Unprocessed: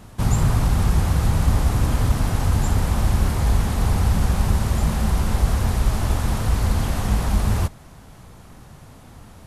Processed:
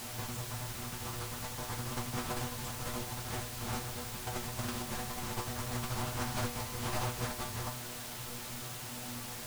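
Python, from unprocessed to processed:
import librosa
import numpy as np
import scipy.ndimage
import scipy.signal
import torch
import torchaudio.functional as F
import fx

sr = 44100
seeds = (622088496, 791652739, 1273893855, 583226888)

y = scipy.signal.sosfilt(scipy.signal.butter(2, 10000.0, 'lowpass', fs=sr, output='sos'), x)
y = fx.low_shelf(y, sr, hz=160.0, db=-9.0)
y = fx.over_compress(y, sr, threshold_db=-30.0, ratio=-0.5)
y = fx.stiff_resonator(y, sr, f0_hz=120.0, decay_s=0.33, stiffness=0.002)
y = fx.quant_dither(y, sr, seeds[0], bits=8, dither='triangular')
y = fx.doppler_dist(y, sr, depth_ms=0.53)
y = y * librosa.db_to_amplitude(5.0)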